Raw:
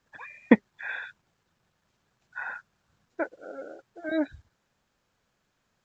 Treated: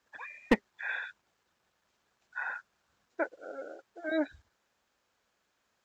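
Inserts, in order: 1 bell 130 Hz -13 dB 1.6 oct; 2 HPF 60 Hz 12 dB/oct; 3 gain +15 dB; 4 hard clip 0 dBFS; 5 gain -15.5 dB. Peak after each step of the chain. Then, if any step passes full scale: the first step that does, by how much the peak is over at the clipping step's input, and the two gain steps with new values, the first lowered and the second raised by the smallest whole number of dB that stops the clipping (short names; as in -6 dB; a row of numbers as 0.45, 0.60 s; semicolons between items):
-5.5, -5.5, +9.5, 0.0, -15.5 dBFS; step 3, 9.5 dB; step 3 +5 dB, step 5 -5.5 dB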